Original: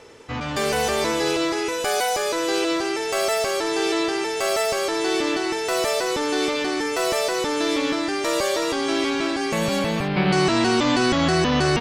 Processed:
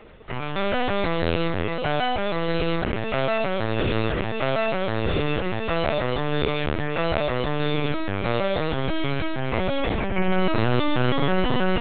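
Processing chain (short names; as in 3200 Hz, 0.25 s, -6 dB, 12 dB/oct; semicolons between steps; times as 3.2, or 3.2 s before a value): spectral gate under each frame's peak -25 dB strong; LPC vocoder at 8 kHz pitch kept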